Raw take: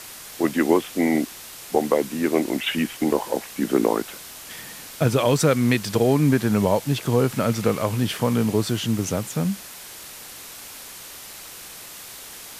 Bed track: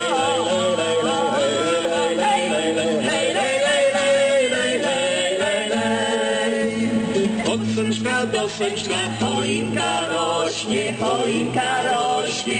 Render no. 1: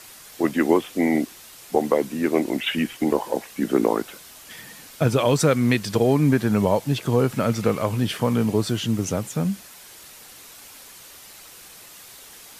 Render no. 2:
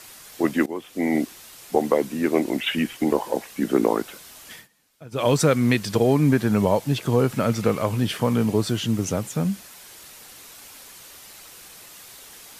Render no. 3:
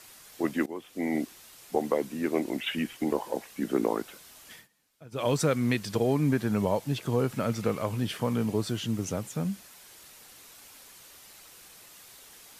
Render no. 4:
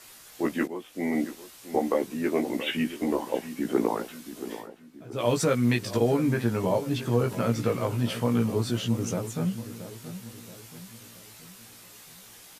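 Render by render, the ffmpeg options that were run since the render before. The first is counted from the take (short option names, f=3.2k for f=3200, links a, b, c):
-af "afftdn=nr=6:nf=-40"
-filter_complex "[0:a]asplit=4[a][b][c][d];[a]atrim=end=0.66,asetpts=PTS-STARTPTS,afade=t=out:st=0.656:d=0.004:c=hsin:silence=0.0891251[e];[b]atrim=start=0.66:end=4.68,asetpts=PTS-STARTPTS,afade=t=in:d=0.55:silence=0.0891251,afade=t=out:st=3.87:d=0.15:silence=0.0749894[f];[c]atrim=start=4.68:end=5.11,asetpts=PTS-STARTPTS,volume=-22.5dB[g];[d]atrim=start=5.11,asetpts=PTS-STARTPTS,afade=t=in:d=0.15:silence=0.0749894[h];[e][f][g][h]concat=n=4:v=0:a=1"
-af "volume=-7dB"
-filter_complex "[0:a]asplit=2[a][b];[b]adelay=17,volume=-3dB[c];[a][c]amix=inputs=2:normalize=0,asplit=2[d][e];[e]adelay=677,lowpass=f=1.6k:p=1,volume=-12dB,asplit=2[f][g];[g]adelay=677,lowpass=f=1.6k:p=1,volume=0.48,asplit=2[h][i];[i]adelay=677,lowpass=f=1.6k:p=1,volume=0.48,asplit=2[j][k];[k]adelay=677,lowpass=f=1.6k:p=1,volume=0.48,asplit=2[l][m];[m]adelay=677,lowpass=f=1.6k:p=1,volume=0.48[n];[d][f][h][j][l][n]amix=inputs=6:normalize=0"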